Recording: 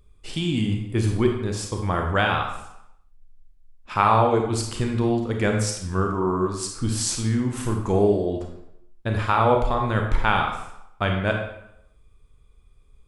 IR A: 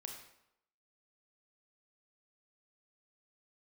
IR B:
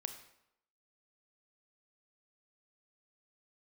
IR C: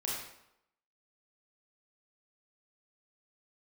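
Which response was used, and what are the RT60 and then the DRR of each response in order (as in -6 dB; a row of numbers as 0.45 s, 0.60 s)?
A; 0.80 s, 0.80 s, 0.80 s; 2.0 dB, 7.5 dB, -5.0 dB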